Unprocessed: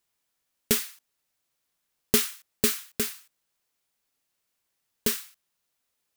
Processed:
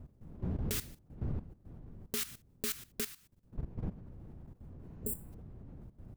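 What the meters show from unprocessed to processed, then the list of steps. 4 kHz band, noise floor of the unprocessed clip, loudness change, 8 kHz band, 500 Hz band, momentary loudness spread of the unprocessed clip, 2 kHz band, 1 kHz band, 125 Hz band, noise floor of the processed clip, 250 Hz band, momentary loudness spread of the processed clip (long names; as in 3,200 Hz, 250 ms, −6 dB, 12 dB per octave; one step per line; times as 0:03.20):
−12.5 dB, −79 dBFS, −12.5 dB, −12.0 dB, −12.5 dB, 10 LU, −12.0 dB, −10.0 dB, +4.5 dB, −65 dBFS, −7.5 dB, 16 LU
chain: wind on the microphone 150 Hz −34 dBFS
output level in coarse steps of 15 dB
healed spectral selection 0:04.89–0:05.30, 680–7,200 Hz before
level −4 dB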